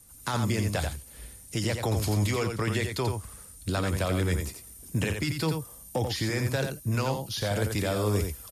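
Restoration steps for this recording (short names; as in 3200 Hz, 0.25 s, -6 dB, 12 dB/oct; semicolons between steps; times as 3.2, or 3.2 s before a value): inverse comb 87 ms -6 dB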